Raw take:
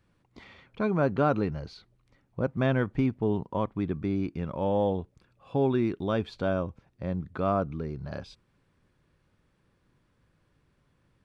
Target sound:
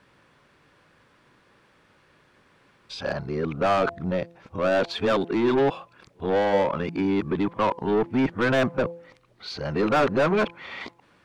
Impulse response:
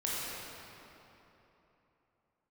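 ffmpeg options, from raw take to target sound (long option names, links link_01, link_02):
-filter_complex "[0:a]areverse,asplit=2[link_01][link_02];[link_02]highpass=frequency=720:poles=1,volume=23dB,asoftclip=type=tanh:threshold=-13dB[link_03];[link_01][link_03]amix=inputs=2:normalize=0,lowpass=frequency=3700:poles=1,volume=-6dB,bandreject=frequency=170.2:width_type=h:width=4,bandreject=frequency=340.4:width_type=h:width=4,bandreject=frequency=510.6:width_type=h:width=4,bandreject=frequency=680.8:width_type=h:width=4,bandreject=frequency=851:width_type=h:width=4,bandreject=frequency=1021.2:width_type=h:width=4"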